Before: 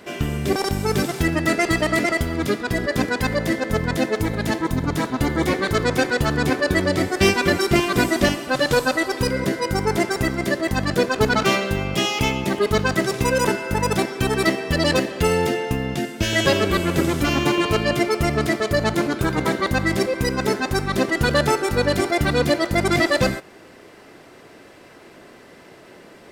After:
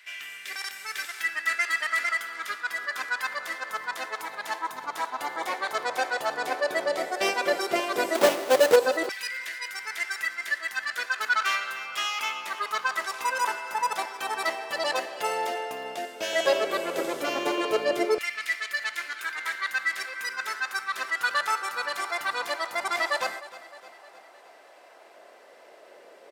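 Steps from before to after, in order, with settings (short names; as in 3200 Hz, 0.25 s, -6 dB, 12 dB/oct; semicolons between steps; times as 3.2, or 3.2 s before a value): 8.15–8.76 half-waves squared off; feedback echo 0.307 s, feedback 55%, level -17.5 dB; LFO high-pass saw down 0.11 Hz 450–2100 Hz; gain -8 dB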